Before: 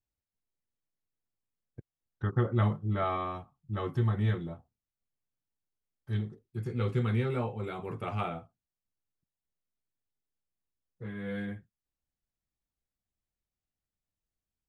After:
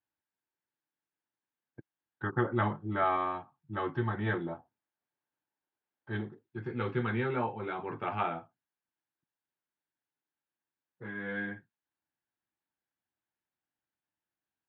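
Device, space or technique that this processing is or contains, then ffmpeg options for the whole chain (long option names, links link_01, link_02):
kitchen radio: -filter_complex "[0:a]highpass=160,equalizer=frequency=190:width_type=q:width=4:gain=-4,equalizer=frequency=320:width_type=q:width=4:gain=5,equalizer=frequency=470:width_type=q:width=4:gain=-3,equalizer=frequency=890:width_type=q:width=4:gain=8,equalizer=frequency=1600:width_type=q:width=4:gain=9,lowpass=frequency=3600:width=0.5412,lowpass=frequency=3600:width=1.3066,asettb=1/sr,asplit=3[link_01][link_02][link_03];[link_01]atrim=end=4.264[link_04];[link_02]atrim=start=4.26:end=6.29,asetpts=PTS-STARTPTS,afade=type=in:duration=0.004:curve=qsin,afade=type=out:start_time=2.026:duration=0.004:curve=qsin,equalizer=frequency=590:width=0.61:gain=5[link_05];[link_03]atrim=start=6.286[link_06];[link_04][link_05]acrossfade=duration=0.004:curve1=hsin:curve2=qsin[link_07];[link_07][link_06]acrossfade=duration=0.004:curve1=qsin:curve2=hsin"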